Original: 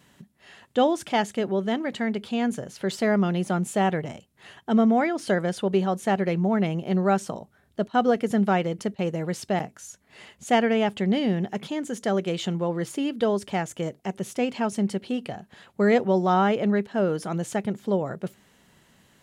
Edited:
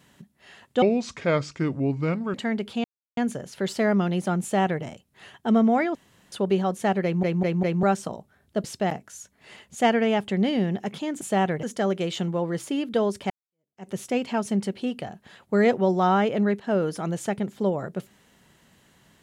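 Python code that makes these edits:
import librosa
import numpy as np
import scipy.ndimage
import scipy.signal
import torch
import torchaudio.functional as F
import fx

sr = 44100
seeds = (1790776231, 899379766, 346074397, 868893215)

y = fx.edit(x, sr, fx.speed_span(start_s=0.82, length_s=1.08, speed=0.71),
    fx.insert_silence(at_s=2.4, length_s=0.33),
    fx.duplicate(start_s=3.65, length_s=0.42, to_s=11.9),
    fx.room_tone_fill(start_s=5.18, length_s=0.37),
    fx.stutter_over(start_s=6.26, slice_s=0.2, count=4),
    fx.cut(start_s=7.87, length_s=1.46),
    fx.fade_in_span(start_s=13.57, length_s=0.59, curve='exp'), tone=tone)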